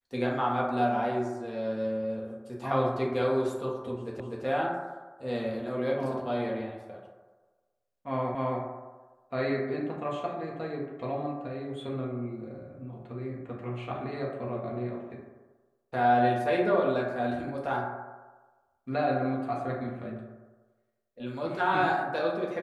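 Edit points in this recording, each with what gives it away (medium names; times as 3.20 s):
4.20 s: repeat of the last 0.25 s
8.35 s: repeat of the last 0.27 s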